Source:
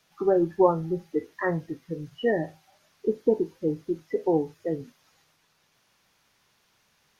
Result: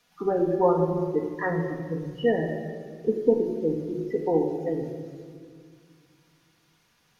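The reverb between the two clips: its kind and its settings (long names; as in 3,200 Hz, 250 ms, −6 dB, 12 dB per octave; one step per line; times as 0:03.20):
rectangular room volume 3,100 cubic metres, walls mixed, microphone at 1.8 metres
level −1.5 dB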